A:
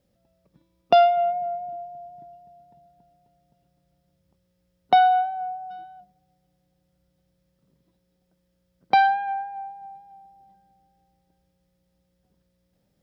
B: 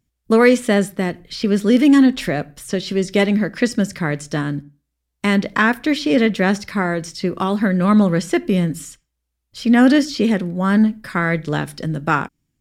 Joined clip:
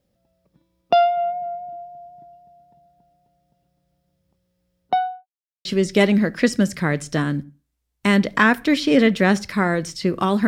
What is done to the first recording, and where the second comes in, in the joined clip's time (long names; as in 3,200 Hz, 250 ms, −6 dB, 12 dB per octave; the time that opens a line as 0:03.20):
A
0:04.78–0:05.27: fade out and dull
0:05.27–0:05.65: silence
0:05.65: continue with B from 0:02.84